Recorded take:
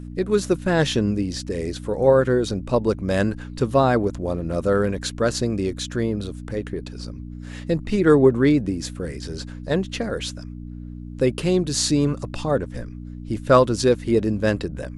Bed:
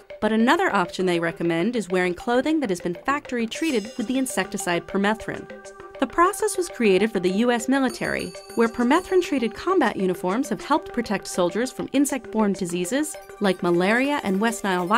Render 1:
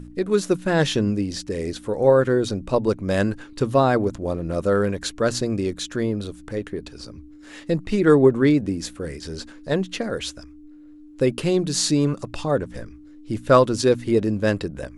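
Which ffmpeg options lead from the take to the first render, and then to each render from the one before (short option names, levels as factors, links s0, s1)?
-af "bandreject=f=60:t=h:w=4,bandreject=f=120:t=h:w=4,bandreject=f=180:t=h:w=4,bandreject=f=240:t=h:w=4"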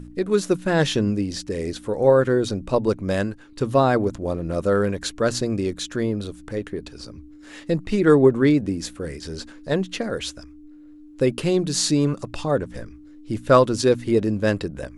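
-filter_complex "[0:a]asplit=3[s0][s1][s2];[s0]atrim=end=3.38,asetpts=PTS-STARTPTS,afade=t=out:st=3.08:d=0.3:silence=0.375837[s3];[s1]atrim=start=3.38:end=3.41,asetpts=PTS-STARTPTS,volume=0.376[s4];[s2]atrim=start=3.41,asetpts=PTS-STARTPTS,afade=t=in:d=0.3:silence=0.375837[s5];[s3][s4][s5]concat=n=3:v=0:a=1"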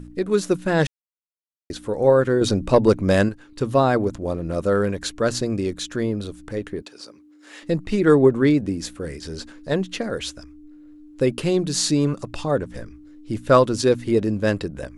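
-filter_complex "[0:a]asettb=1/sr,asplit=3[s0][s1][s2];[s0]atrim=end=2.414[s3];[s1]atrim=start=2.41:end=3.29,asetpts=PTS-STARTPTS,afade=t=in:d=0.004:c=qsin,afade=t=out:st=0.876:d=0.004:c=qsin,acontrast=46[s4];[s2]atrim=start=3.286[s5];[s3][s4]acrossfade=d=0.004:c1=hsin:c2=qsin[s6];[s6][s5]acrossfade=d=0.004:c1=qsin:c2=hsin,asettb=1/sr,asplit=3[s7][s8][s9];[s7]atrim=end=6.824[s10];[s8]atrim=start=6.82:end=7.63,asetpts=PTS-STARTPTS,afade=t=in:d=0.004:c=qsin,afade=t=out:st=0.806:d=0.004:c=qsin,highpass=390[s11];[s9]atrim=start=7.626[s12];[s10][s11]acrossfade=d=0.004:c1=hsin:c2=qsin[s13];[s13][s12]acrossfade=d=0.004:c1=qsin:c2=hsin,asplit=3[s14][s15][s16];[s14]atrim=end=0.87,asetpts=PTS-STARTPTS,afade=t=out:st=0.866:d=0.004:c=hsin[s17];[s15]atrim=start=0.87:end=1.7,asetpts=PTS-STARTPTS,volume=0[s18];[s16]atrim=start=1.7,asetpts=PTS-STARTPTS,afade=t=in:d=0.004:c=hsin[s19];[s17][s18][s19]concat=n=3:v=0:a=1"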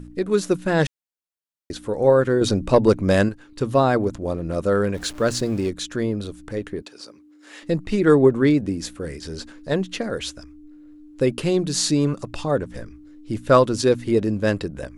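-filter_complex "[0:a]asettb=1/sr,asplit=3[s0][s1][s2];[s0]atrim=end=4.944[s3];[s1]atrim=start=4.94:end=5.69,asetpts=PTS-STARTPTS,afade=t=in:d=0.004:c=qsin,afade=t=out:st=0.746:d=0.004:c=qsin,aeval=exprs='val(0)+0.5*0.0133*sgn(val(0))':c=same[s4];[s2]atrim=start=5.686[s5];[s3][s4]acrossfade=d=0.004:c1=hsin:c2=qsin[s6];[s6][s5]acrossfade=d=0.004:c1=qsin:c2=hsin"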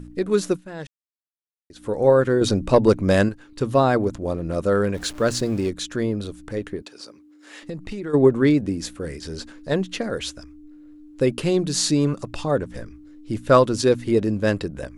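-filter_complex "[0:a]asplit=3[s0][s1][s2];[s0]afade=t=out:st=6.76:d=0.02[s3];[s1]acompressor=threshold=0.0398:ratio=6:attack=3.2:release=140:knee=1:detection=peak,afade=t=in:st=6.76:d=0.02,afade=t=out:st=8.13:d=0.02[s4];[s2]afade=t=in:st=8.13:d=0.02[s5];[s3][s4][s5]amix=inputs=3:normalize=0,asplit=3[s6][s7][s8];[s6]atrim=end=0.62,asetpts=PTS-STARTPTS,afade=t=out:st=0.49:d=0.13:silence=0.16788[s9];[s7]atrim=start=0.62:end=1.74,asetpts=PTS-STARTPTS,volume=0.168[s10];[s8]atrim=start=1.74,asetpts=PTS-STARTPTS,afade=t=in:d=0.13:silence=0.16788[s11];[s9][s10][s11]concat=n=3:v=0:a=1"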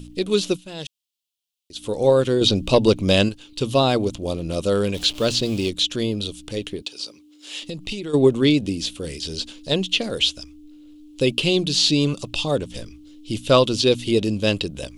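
-filter_complex "[0:a]acrossover=split=4100[s0][s1];[s1]acompressor=threshold=0.00631:ratio=4:attack=1:release=60[s2];[s0][s2]amix=inputs=2:normalize=0,highshelf=f=2300:t=q:w=3:g=10"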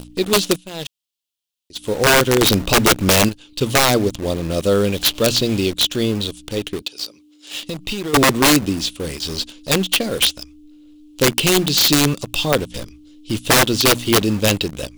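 -filter_complex "[0:a]asplit=2[s0][s1];[s1]acrusher=bits=4:mix=0:aa=0.000001,volume=0.631[s2];[s0][s2]amix=inputs=2:normalize=0,aeval=exprs='(mod(2.24*val(0)+1,2)-1)/2.24':c=same"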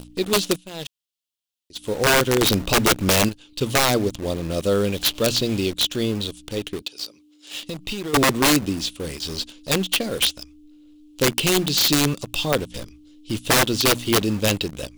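-af "volume=0.631"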